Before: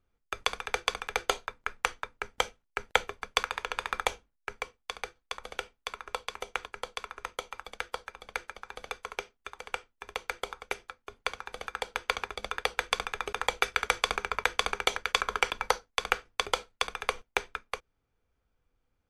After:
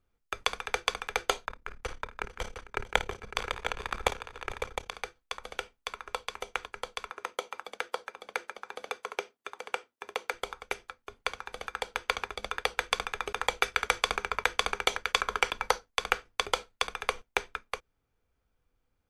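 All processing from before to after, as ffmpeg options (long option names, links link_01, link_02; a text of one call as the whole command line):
ffmpeg -i in.wav -filter_complex "[0:a]asettb=1/sr,asplit=3[link_01][link_02][link_03];[link_01]atrim=end=1.454[link_04];[link_02]atrim=start=1.45:end=4.94,asetpts=PTS-STARTPTS,afade=type=in:duration=0.004:curve=qsin,afade=type=out:start_time=3.486:duration=0.004:curve=qsin,lowshelf=frequency=320:gain=11.5,tremolo=f=34:d=0.889,aecho=1:1:54|449|555|710:0.224|0.126|0.251|0.398,atrim=end_sample=153909[link_05];[link_03]atrim=start=4.936[link_06];[link_04][link_05]acrossfade=duration=0.004:curve1=hsin:curve2=qsin[link_07];[link_07][link_06]acrossfade=duration=0.004:curve1=qsin:curve2=hsin,asettb=1/sr,asplit=3[link_08][link_09][link_10];[link_08]atrim=end=7.104[link_11];[link_09]atrim=start=7.1:end=10.34,asetpts=PTS-STARTPTS,afade=type=in:duration=0.004:curve=qsin,afade=type=out:start_time=3.236:duration=0.004:curve=qsin,highpass=350,lowshelf=frequency=450:gain=10.5[link_12];[link_10]atrim=start=10.336[link_13];[link_11][link_12]acrossfade=duration=0.004:curve1=hsin:curve2=qsin[link_14];[link_14][link_13]acrossfade=duration=0.004:curve1=qsin:curve2=hsin" out.wav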